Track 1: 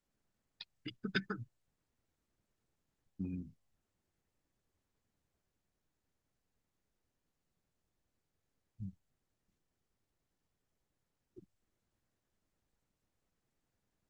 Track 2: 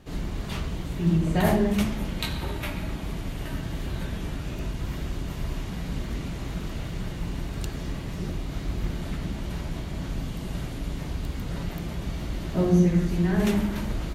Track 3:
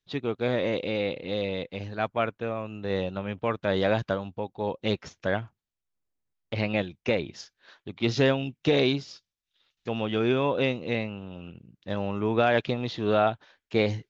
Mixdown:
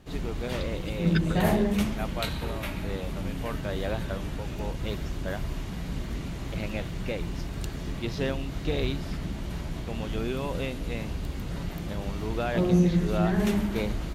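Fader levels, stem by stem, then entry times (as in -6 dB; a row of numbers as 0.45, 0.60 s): +3.0, -2.0, -8.0 dB; 0.00, 0.00, 0.00 s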